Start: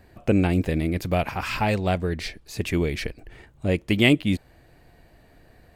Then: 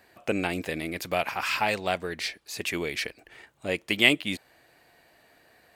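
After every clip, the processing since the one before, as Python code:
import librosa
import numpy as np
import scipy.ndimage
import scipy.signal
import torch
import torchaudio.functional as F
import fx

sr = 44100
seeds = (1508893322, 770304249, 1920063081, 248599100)

y = fx.highpass(x, sr, hz=980.0, slope=6)
y = y * librosa.db_to_amplitude(2.5)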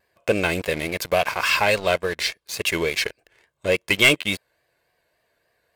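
y = x + 0.51 * np.pad(x, (int(1.9 * sr / 1000.0), 0))[:len(x)]
y = fx.leveller(y, sr, passes=3)
y = fx.vibrato(y, sr, rate_hz=3.5, depth_cents=64.0)
y = y * librosa.db_to_amplitude(-4.5)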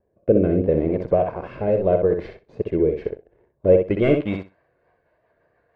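y = fx.rotary_switch(x, sr, hz=0.8, then_hz=6.7, switch_at_s=4.36)
y = fx.echo_feedback(y, sr, ms=63, feedback_pct=15, wet_db=-6)
y = fx.filter_sweep_lowpass(y, sr, from_hz=460.0, to_hz=1200.0, start_s=3.53, end_s=4.58, q=1.0)
y = y * librosa.db_to_amplitude(7.5)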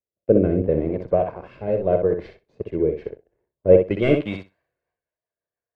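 y = fx.band_widen(x, sr, depth_pct=70)
y = y * librosa.db_to_amplitude(-1.5)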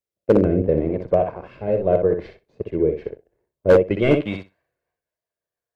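y = np.clip(x, -10.0 ** (-8.5 / 20.0), 10.0 ** (-8.5 / 20.0))
y = y * librosa.db_to_amplitude(1.5)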